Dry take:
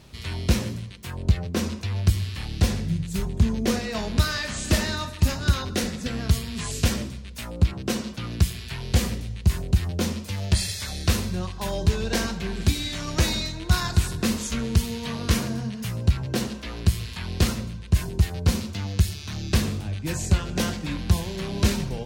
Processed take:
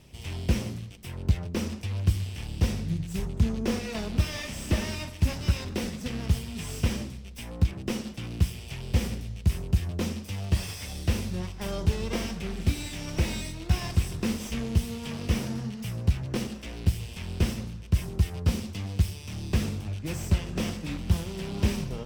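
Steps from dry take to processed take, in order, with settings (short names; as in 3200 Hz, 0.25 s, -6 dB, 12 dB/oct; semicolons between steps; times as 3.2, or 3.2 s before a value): minimum comb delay 0.36 ms; slew limiter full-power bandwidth 110 Hz; gain -3.5 dB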